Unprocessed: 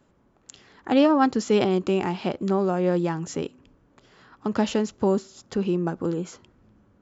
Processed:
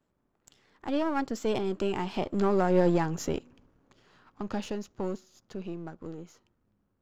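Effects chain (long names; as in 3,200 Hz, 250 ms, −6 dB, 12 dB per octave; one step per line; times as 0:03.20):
gain on one half-wave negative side −7 dB
source passing by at 0:02.85, 13 m/s, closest 7.9 metres
level +2.5 dB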